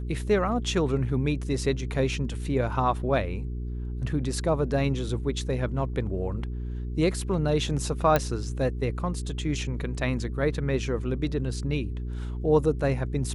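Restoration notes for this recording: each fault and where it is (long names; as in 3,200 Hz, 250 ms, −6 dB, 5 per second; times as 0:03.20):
mains hum 60 Hz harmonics 7 −32 dBFS
0:08.16: click −9 dBFS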